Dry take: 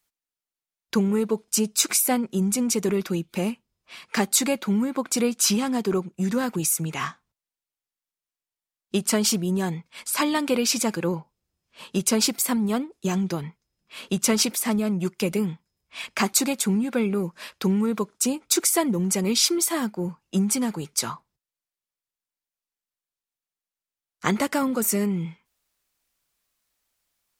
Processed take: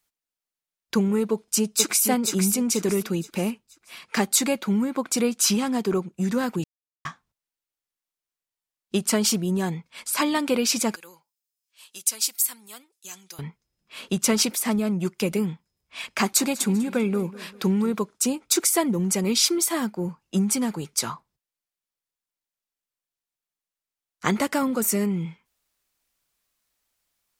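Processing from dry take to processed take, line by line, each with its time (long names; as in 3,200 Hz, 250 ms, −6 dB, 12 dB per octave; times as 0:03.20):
0:01.31–0:02.06: delay throw 480 ms, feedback 35%, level −5.5 dB
0:06.64–0:07.05: silence
0:10.96–0:13.39: first difference
0:16.01–0:17.94: repeating echo 196 ms, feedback 45%, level −18.5 dB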